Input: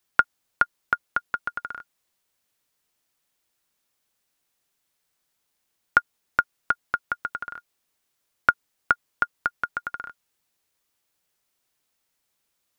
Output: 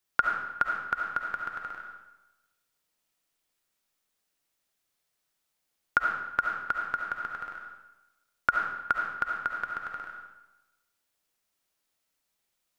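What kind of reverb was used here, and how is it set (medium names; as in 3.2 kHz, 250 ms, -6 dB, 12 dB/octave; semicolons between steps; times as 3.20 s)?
algorithmic reverb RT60 1 s, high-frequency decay 0.9×, pre-delay 30 ms, DRR 0.5 dB; trim -6 dB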